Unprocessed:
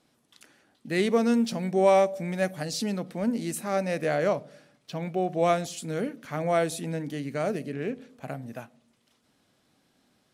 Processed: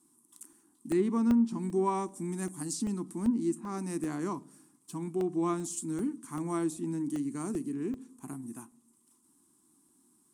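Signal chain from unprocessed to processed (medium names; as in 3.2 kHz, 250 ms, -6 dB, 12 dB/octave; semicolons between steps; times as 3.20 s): pre-emphasis filter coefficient 0.8; careless resampling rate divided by 2×, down none, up hold; FFT filter 120 Hz 0 dB, 340 Hz +15 dB, 560 Hz -20 dB, 1 kHz +10 dB, 1.5 kHz -6 dB, 2.3 kHz -11 dB, 4.3 kHz -11 dB, 6.1 kHz -2 dB, 8.8 kHz +12 dB, 14 kHz -5 dB; low-pass that closes with the level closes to 870 Hz, closed at -22 dBFS; crackling interface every 0.39 s, samples 64, zero, from 0.53 s; trim +3.5 dB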